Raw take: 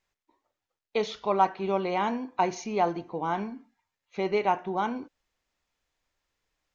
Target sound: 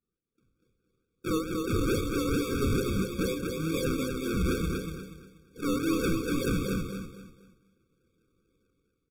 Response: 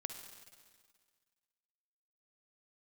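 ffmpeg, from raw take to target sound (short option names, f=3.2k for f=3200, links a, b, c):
-filter_complex "[0:a]afftfilt=real='re':imag='-im':win_size=2048:overlap=0.75,highpass=f=940:p=1,adynamicequalizer=threshold=0.00316:dfrequency=1200:dqfactor=3.2:tfrequency=1200:tqfactor=3.2:attack=5:release=100:ratio=0.375:range=3:mode=boostabove:tftype=bell,acrossover=split=2000[a][b];[a]alimiter=level_in=1dB:limit=-24dB:level=0:latency=1:release=188,volume=-1dB[c];[b]acompressor=threshold=-57dB:ratio=16[d];[c][d]amix=inputs=2:normalize=0,acrusher=samples=32:mix=1:aa=0.000001:lfo=1:lforange=19.2:lforate=3.1,dynaudnorm=f=130:g=7:m=16dB,asoftclip=type=tanh:threshold=-23.5dB,asplit=2[e][f];[f]aecho=0:1:178|356|534|712:0.631|0.196|0.0606|0.0188[g];[e][g]amix=inputs=2:normalize=0,asetrate=32667,aresample=44100,afftfilt=real='re*eq(mod(floor(b*sr/1024/540),2),0)':imag='im*eq(mod(floor(b*sr/1024/540),2),0)':win_size=1024:overlap=0.75"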